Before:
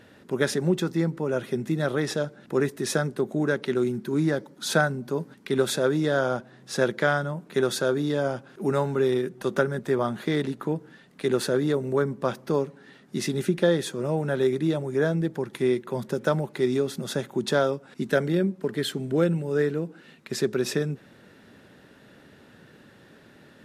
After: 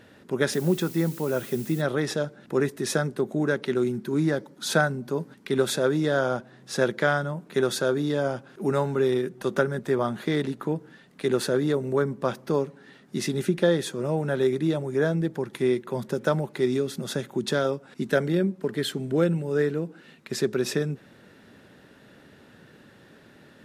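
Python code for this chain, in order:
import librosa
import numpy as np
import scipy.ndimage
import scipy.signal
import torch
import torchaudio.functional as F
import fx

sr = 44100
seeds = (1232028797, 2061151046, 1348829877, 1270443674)

y = fx.dmg_noise_colour(x, sr, seeds[0], colour='blue', level_db=-44.0, at=(0.52, 1.8), fade=0.02)
y = fx.dynamic_eq(y, sr, hz=820.0, q=1.3, threshold_db=-37.0, ratio=4.0, max_db=-7, at=(16.74, 17.65))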